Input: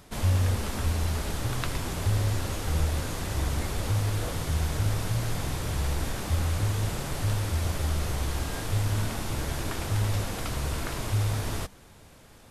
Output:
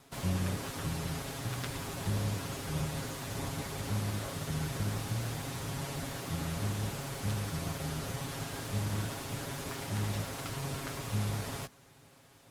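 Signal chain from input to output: comb filter that takes the minimum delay 7.3 ms; high-pass 59 Hz; trim -4.5 dB

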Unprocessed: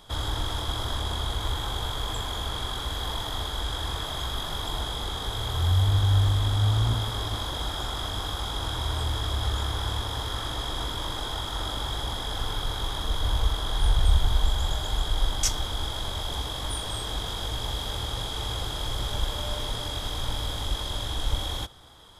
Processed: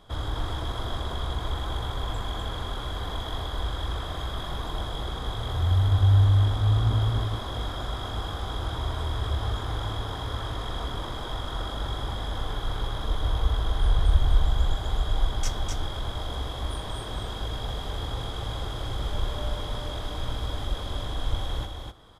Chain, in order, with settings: treble shelf 2.7 kHz -12 dB; band-stop 880 Hz, Q 15; delay 252 ms -4.5 dB

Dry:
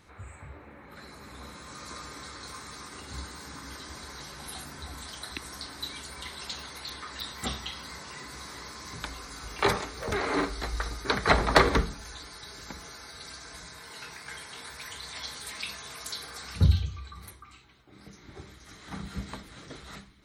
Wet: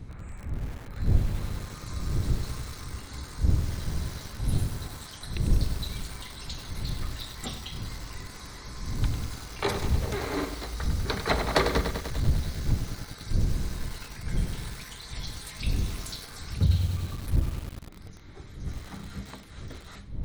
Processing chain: wind noise 88 Hz -29 dBFS; dynamic bell 1.4 kHz, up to -5 dB, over -45 dBFS, Q 0.84; bit-crushed delay 98 ms, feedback 80%, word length 6-bit, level -8 dB; trim -2 dB

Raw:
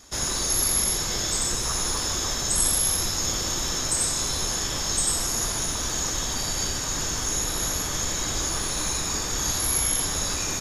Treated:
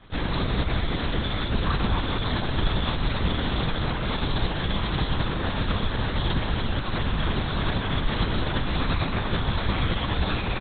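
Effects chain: bass shelf 210 Hz +6.5 dB; doubling 17 ms -2.5 dB; LPC vocoder at 8 kHz whisper

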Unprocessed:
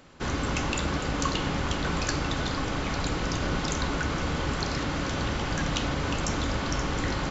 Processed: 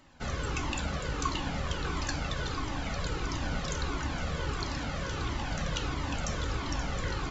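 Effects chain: Shepard-style flanger falling 1.5 Hz; trim -1 dB

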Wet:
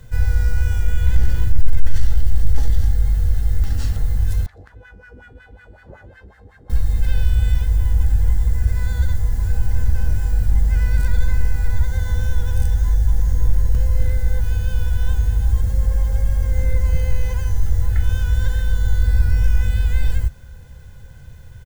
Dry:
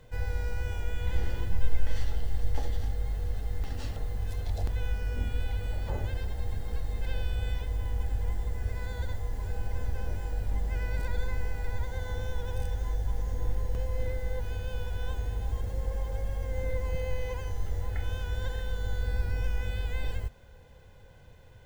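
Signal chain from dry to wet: one-sided wavefolder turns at -16.5 dBFS; peaking EQ 1.5 kHz +9 dB 1 oct; saturation -18 dBFS, distortion -16 dB; tone controls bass +15 dB, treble +14 dB; doubling 15 ms -14 dB; 4.46–6.70 s: wah-wah 5.4 Hz 310–1800 Hz, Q 3.1

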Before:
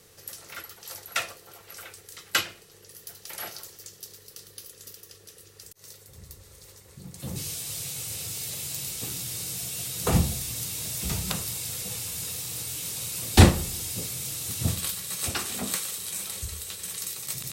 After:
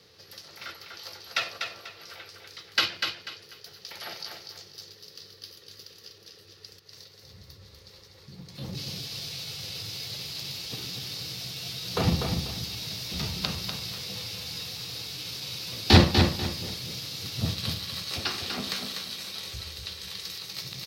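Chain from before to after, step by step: high-pass 75 Hz 12 dB/octave; Chebyshev shaper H 3 -20 dB, 5 -31 dB, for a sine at -1.5 dBFS; tempo 0.84×; resonant high shelf 6.2 kHz -10.5 dB, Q 3; on a send: feedback delay 245 ms, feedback 29%, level -5.5 dB

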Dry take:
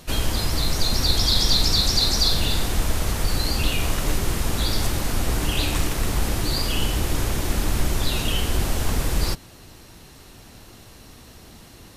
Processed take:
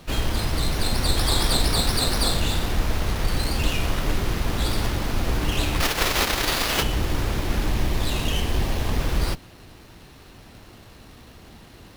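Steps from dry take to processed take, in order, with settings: 5.80–6.81 s: formants flattened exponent 0.3; 7.68–8.97 s: band-stop 1.4 kHz, Q 5.8; sliding maximum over 5 samples

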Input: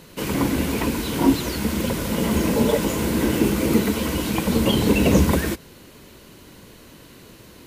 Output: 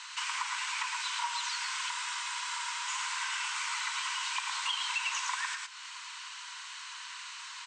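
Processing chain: Chebyshev band-pass 950–8200 Hz, order 5; delay 111 ms -5.5 dB; compression 2.5:1, threshold -45 dBFS, peak gain reduction 14.5 dB; spectral freeze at 1.93 s, 0.94 s; trim +7.5 dB

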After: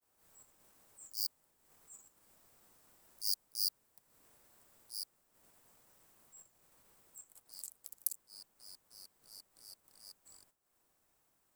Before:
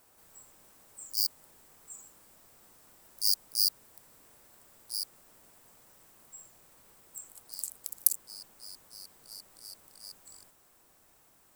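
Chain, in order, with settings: expander -57 dBFS; transient shaper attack -6 dB, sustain -10 dB; trim -5.5 dB

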